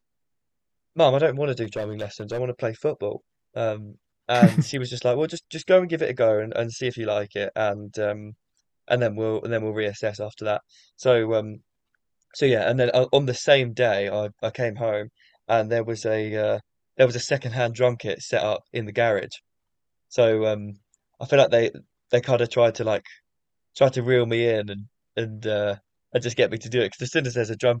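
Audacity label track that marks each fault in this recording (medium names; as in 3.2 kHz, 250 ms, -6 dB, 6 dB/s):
1.630000	2.400000	clipped -23.5 dBFS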